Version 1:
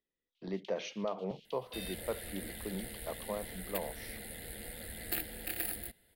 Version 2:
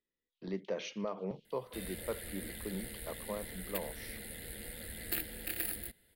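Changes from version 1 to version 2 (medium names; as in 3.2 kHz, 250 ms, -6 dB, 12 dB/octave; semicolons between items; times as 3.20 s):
first sound -11.0 dB; master: add peaking EQ 730 Hz -6 dB 0.51 oct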